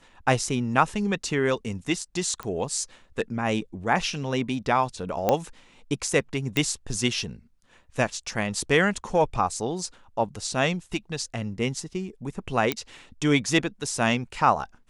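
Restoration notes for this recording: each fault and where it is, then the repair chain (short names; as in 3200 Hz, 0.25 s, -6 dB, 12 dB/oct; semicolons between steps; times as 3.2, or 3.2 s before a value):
2.43 pop -20 dBFS
5.29 pop -8 dBFS
6.57 pop -10 dBFS
12.72 pop -9 dBFS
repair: de-click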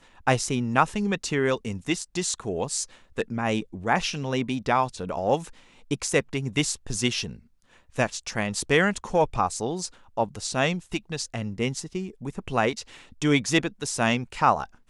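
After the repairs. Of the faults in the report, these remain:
none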